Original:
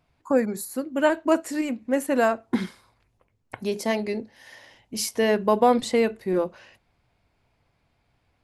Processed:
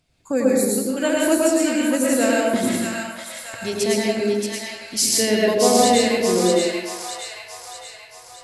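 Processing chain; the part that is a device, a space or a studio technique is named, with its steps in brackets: graphic EQ 1/4/8 kHz -9/+5/+11 dB; bathroom (reverberation RT60 0.95 s, pre-delay 98 ms, DRR -3.5 dB); two-band feedback delay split 810 Hz, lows 92 ms, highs 628 ms, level -4 dB

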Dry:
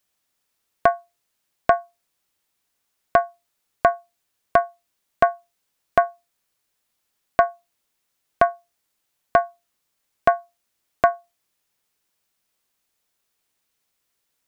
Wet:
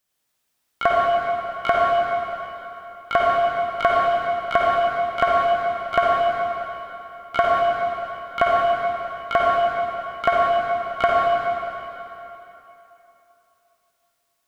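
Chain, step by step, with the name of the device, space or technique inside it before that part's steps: shimmer-style reverb (harmony voices +12 st -9 dB; reverberation RT60 3.2 s, pre-delay 48 ms, DRR -4.5 dB); trim -3 dB

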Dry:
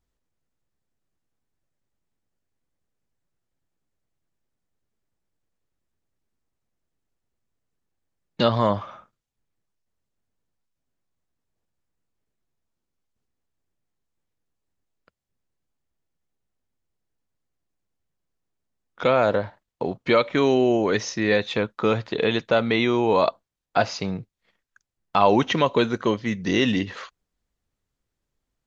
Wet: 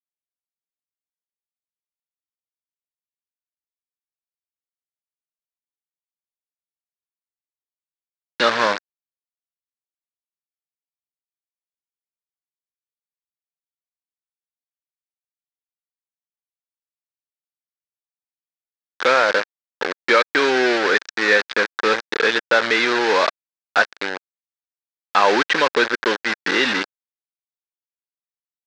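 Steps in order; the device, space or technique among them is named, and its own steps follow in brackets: hand-held game console (bit crusher 4-bit; cabinet simulation 460–4900 Hz, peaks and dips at 670 Hz -8 dB, 990 Hz -3 dB, 1.6 kHz +9 dB, 3 kHz -4 dB); trim +5.5 dB

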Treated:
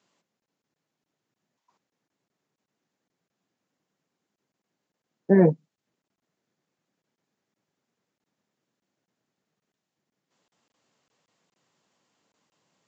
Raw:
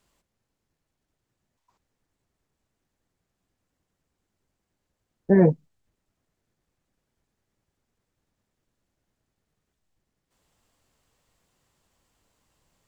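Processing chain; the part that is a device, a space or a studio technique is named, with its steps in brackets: call with lost packets (high-pass 150 Hz 24 dB/octave; resampled via 16 kHz; lost packets random)

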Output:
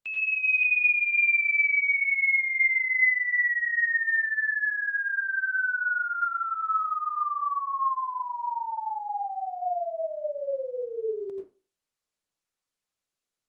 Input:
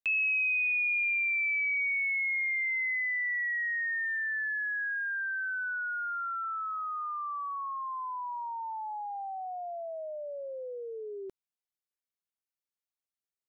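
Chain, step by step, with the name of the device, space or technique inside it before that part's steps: far-field microphone of a smart speaker (reverberation RT60 0.35 s, pre-delay 81 ms, DRR -2.5 dB; high-pass 100 Hz 12 dB/octave; level rider gain up to 7 dB; trim -5 dB; Opus 20 kbps 48 kHz)

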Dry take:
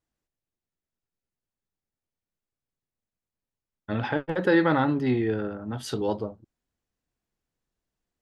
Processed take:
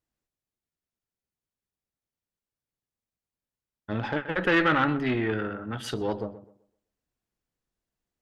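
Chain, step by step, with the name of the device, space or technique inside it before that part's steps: rockabilly slapback (valve stage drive 19 dB, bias 0.5; tape echo 126 ms, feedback 31%, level -13 dB, low-pass 1.9 kHz); 4.16–5.91 s: high-order bell 2 kHz +8.5 dB

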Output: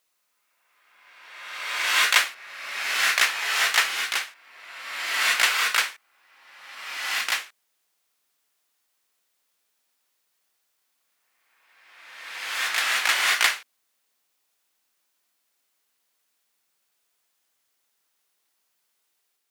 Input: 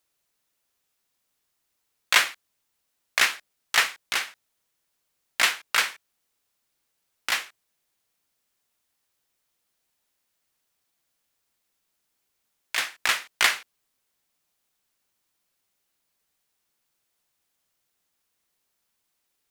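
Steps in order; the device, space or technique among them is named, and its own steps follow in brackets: ghost voice (reverse; reverberation RT60 1.8 s, pre-delay 114 ms, DRR -1.5 dB; reverse; high-pass 460 Hz 6 dB/octave)

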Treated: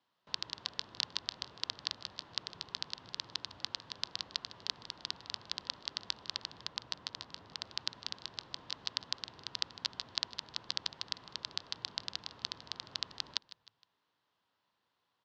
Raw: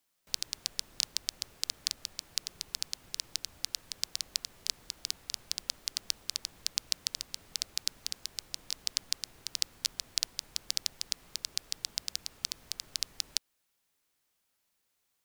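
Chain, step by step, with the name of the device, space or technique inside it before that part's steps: frequency-shifting delay pedal into a guitar cabinet (frequency-shifting echo 155 ms, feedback 41%, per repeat -56 Hz, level -17 dB; cabinet simulation 100–4000 Hz, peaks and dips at 110 Hz +4 dB, 1 kHz +8 dB, 2.3 kHz -8 dB); 6.64–7.66 s: peaking EQ 4.2 kHz -4 dB 2.1 oct; trim +3 dB

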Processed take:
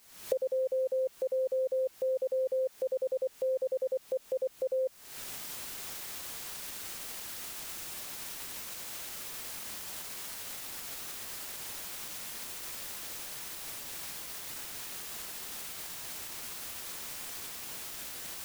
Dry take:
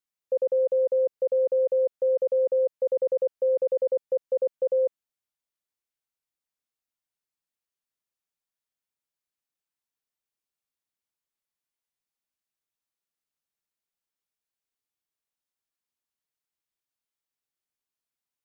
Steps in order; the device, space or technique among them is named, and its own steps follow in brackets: cheap recorder with automatic gain (white noise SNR 24 dB; recorder AGC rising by 64 dB/s); trim -7.5 dB

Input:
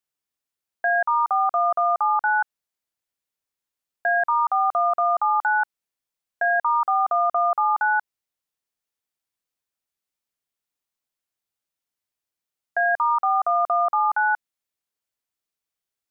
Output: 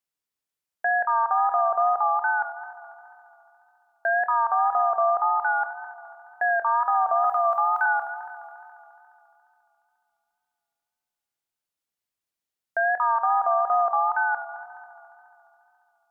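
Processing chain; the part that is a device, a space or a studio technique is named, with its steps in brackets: 7.24–7.86 s: tilt EQ +5.5 dB/octave; multi-head tape echo (multi-head delay 70 ms, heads first and third, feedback 71%, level -12.5 dB; wow and flutter); trim -2 dB

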